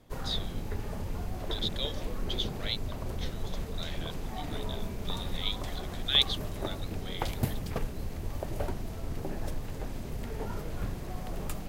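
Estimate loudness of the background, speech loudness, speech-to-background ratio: -38.0 LUFS, -34.0 LUFS, 4.0 dB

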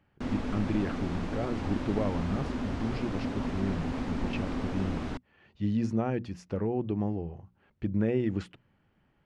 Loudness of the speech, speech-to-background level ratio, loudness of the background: -33.5 LUFS, 1.5 dB, -35.0 LUFS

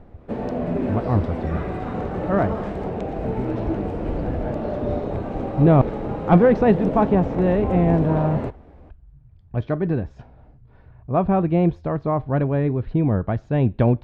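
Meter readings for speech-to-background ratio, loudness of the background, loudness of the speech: 5.5 dB, -27.0 LUFS, -21.5 LUFS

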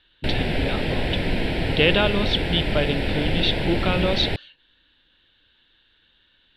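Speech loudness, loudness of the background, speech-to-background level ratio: -24.5 LUFS, -25.5 LUFS, 1.0 dB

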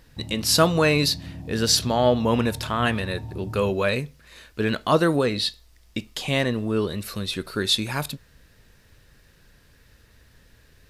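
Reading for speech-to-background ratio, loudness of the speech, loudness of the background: 15.0 dB, -23.0 LUFS, -38.0 LUFS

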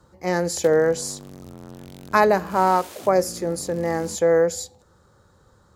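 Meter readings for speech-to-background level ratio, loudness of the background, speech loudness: 19.5 dB, -41.0 LUFS, -21.5 LUFS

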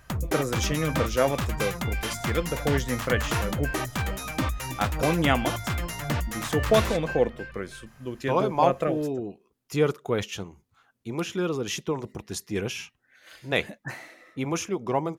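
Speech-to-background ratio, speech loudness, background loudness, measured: 1.5 dB, -28.5 LUFS, -30.0 LUFS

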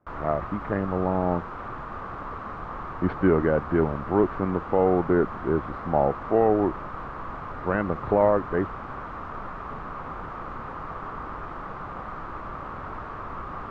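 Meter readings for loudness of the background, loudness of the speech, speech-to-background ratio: -36.0 LUFS, -25.0 LUFS, 11.0 dB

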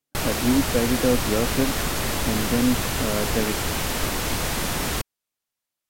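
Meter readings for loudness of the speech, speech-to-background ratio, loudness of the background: -25.5 LUFS, -0.5 dB, -25.0 LUFS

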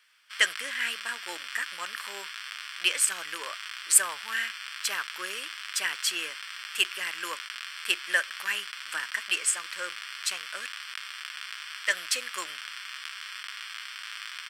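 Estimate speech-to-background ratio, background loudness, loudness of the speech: 8.0 dB, -37.5 LUFS, -29.5 LUFS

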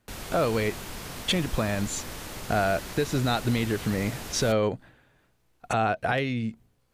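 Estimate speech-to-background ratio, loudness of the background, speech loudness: 10.5 dB, -38.0 LUFS, -27.5 LUFS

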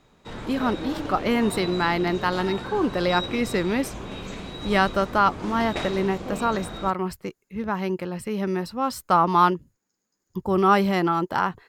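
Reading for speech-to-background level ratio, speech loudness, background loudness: 10.0 dB, -24.0 LUFS, -34.0 LUFS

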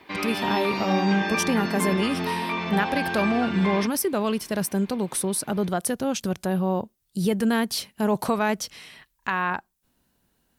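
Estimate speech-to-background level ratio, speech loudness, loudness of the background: 1.5 dB, -26.0 LUFS, -27.5 LUFS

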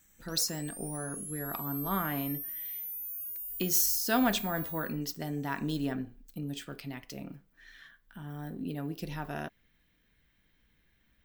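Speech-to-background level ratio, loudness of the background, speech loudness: 4.0 dB, -37.5 LUFS, -33.5 LUFS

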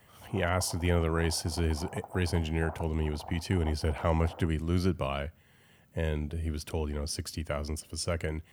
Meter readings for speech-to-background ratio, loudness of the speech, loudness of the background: 15.0 dB, -32.0 LUFS, -47.0 LUFS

